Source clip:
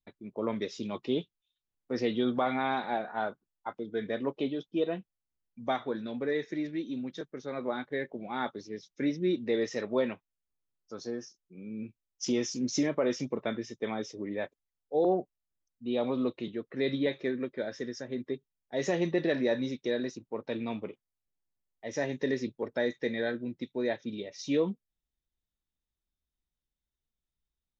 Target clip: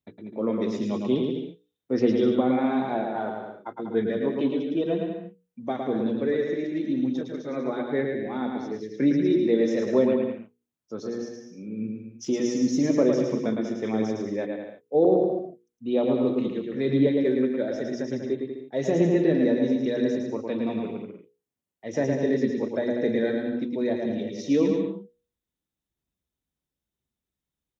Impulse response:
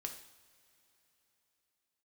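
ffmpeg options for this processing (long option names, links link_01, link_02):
-filter_complex "[0:a]highpass=97,equalizer=frequency=4600:width_type=o:width=0.32:gain=-4.5,bandreject=frequency=60:width_type=h:width=6,bandreject=frequency=120:width_type=h:width=6,bandreject=frequency=180:width_type=h:width=6,bandreject=frequency=240:width_type=h:width=6,bandreject=frequency=300:width_type=h:width=6,bandreject=frequency=360:width_type=h:width=6,bandreject=frequency=420:width_type=h:width=6,bandreject=frequency=480:width_type=h:width=6,acrossover=split=530[link_01][link_02];[link_01]acontrast=84[link_03];[link_02]alimiter=level_in=4.5dB:limit=-24dB:level=0:latency=1:release=298,volume=-4.5dB[link_04];[link_03][link_04]amix=inputs=2:normalize=0,aphaser=in_gain=1:out_gain=1:delay=4.1:decay=0.3:speed=1:type=sinusoidal,aecho=1:1:110|192.5|254.4|300.8|335.6:0.631|0.398|0.251|0.158|0.1"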